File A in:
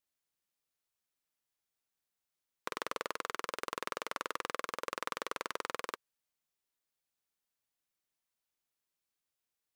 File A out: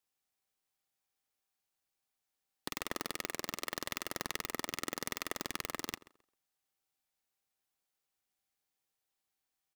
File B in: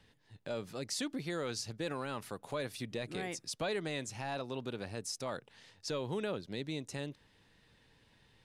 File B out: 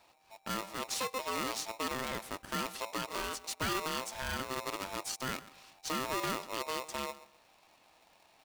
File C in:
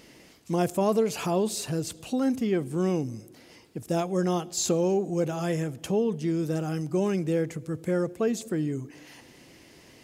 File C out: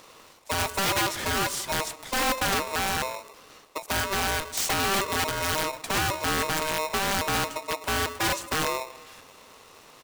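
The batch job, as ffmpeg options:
-filter_complex "[0:a]aeval=exprs='if(lt(val(0),0),0.708*val(0),val(0))':c=same,acontrast=28,aeval=exprs='(mod(7.08*val(0)+1,2)-1)/7.08':c=same,asplit=2[a][b];[b]adelay=132,lowpass=f=1k:p=1,volume=-16dB,asplit=2[c][d];[d]adelay=132,lowpass=f=1k:p=1,volume=0.26,asplit=2[e][f];[f]adelay=132,lowpass=f=1k:p=1,volume=0.26[g];[c][e][g]amix=inputs=3:normalize=0[h];[a][h]amix=inputs=2:normalize=0,aeval=exprs='val(0)*sgn(sin(2*PI*780*n/s))':c=same,volume=-2.5dB"

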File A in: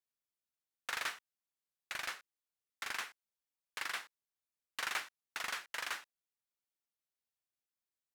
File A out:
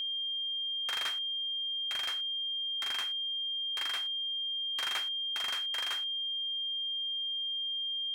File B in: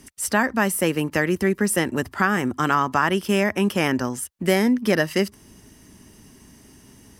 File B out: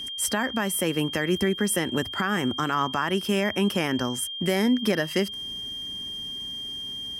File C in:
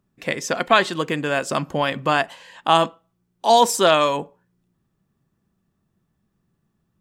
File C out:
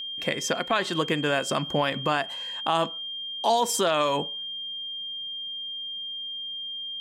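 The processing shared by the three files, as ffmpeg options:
-af "aeval=exprs='val(0)+0.0251*sin(2*PI*3200*n/s)':c=same,alimiter=limit=-13.5dB:level=0:latency=1:release=195"

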